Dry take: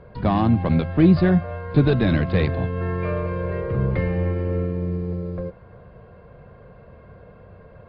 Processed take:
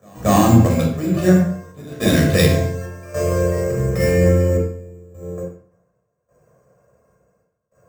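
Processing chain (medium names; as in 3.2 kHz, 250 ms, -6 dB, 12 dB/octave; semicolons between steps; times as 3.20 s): level-controlled noise filter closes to 2.5 kHz; random-step tremolo 3.5 Hz, depth 90%; dynamic bell 940 Hz, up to -5 dB, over -38 dBFS, Q 1.2; pre-echo 229 ms -18.5 dB; careless resampling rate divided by 6×, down none, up hold; high-pass 210 Hz 6 dB/octave; reverberation RT60 0.65 s, pre-delay 15 ms, DRR 0 dB; loudness maximiser +8.5 dB; three bands expanded up and down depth 70%; trim -3 dB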